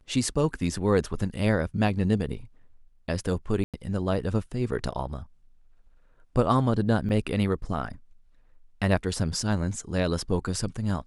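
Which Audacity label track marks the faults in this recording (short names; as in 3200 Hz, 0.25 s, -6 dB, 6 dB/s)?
3.640000	3.740000	gap 97 ms
7.090000	7.100000	gap 6.1 ms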